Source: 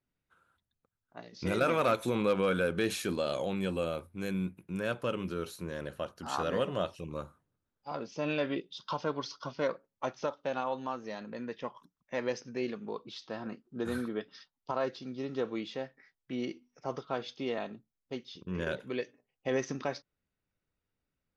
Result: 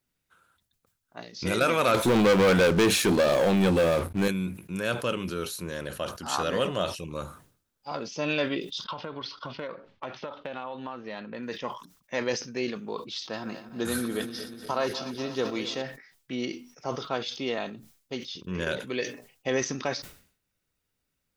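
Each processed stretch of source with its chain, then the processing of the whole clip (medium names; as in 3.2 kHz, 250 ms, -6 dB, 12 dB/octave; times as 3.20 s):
1.94–4.28 s: treble shelf 2.5 kHz -11.5 dB + waveshaping leveller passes 3
8.84–11.43 s: low-pass 3.6 kHz 24 dB/octave + compression 10:1, threshold -35 dBFS
13.33–15.82 s: backward echo that repeats 121 ms, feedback 80%, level -13 dB + treble shelf 6.3 kHz +10 dB
whole clip: treble shelf 2.6 kHz +9.5 dB; decay stretcher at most 110 dB/s; trim +3 dB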